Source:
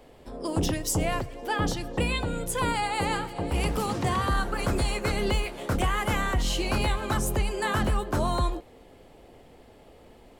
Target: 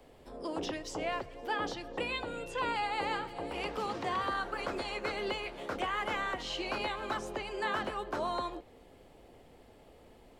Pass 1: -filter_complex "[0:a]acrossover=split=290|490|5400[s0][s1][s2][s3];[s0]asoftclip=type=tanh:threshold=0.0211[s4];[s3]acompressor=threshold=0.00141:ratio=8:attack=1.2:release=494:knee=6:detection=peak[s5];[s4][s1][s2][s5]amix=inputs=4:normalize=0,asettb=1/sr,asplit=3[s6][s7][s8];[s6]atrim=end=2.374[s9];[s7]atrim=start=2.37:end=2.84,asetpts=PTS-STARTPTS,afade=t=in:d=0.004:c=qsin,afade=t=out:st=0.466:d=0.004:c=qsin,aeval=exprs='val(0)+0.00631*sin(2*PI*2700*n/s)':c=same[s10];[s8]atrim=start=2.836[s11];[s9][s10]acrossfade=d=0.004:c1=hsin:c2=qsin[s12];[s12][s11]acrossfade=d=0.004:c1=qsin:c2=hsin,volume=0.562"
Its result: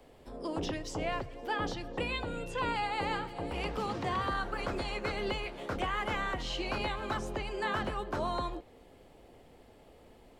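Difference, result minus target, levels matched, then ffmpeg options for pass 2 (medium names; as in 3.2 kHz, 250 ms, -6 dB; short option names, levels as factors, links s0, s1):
saturation: distortion -5 dB
-filter_complex "[0:a]acrossover=split=290|490|5400[s0][s1][s2][s3];[s0]asoftclip=type=tanh:threshold=0.00562[s4];[s3]acompressor=threshold=0.00141:ratio=8:attack=1.2:release=494:knee=6:detection=peak[s5];[s4][s1][s2][s5]amix=inputs=4:normalize=0,asettb=1/sr,asplit=3[s6][s7][s8];[s6]atrim=end=2.374[s9];[s7]atrim=start=2.37:end=2.84,asetpts=PTS-STARTPTS,afade=t=in:d=0.004:c=qsin,afade=t=out:st=0.466:d=0.004:c=qsin,aeval=exprs='val(0)+0.00631*sin(2*PI*2700*n/s)':c=same[s10];[s8]atrim=start=2.836[s11];[s9][s10]acrossfade=d=0.004:c1=hsin:c2=qsin[s12];[s12][s11]acrossfade=d=0.004:c1=qsin:c2=hsin,volume=0.562"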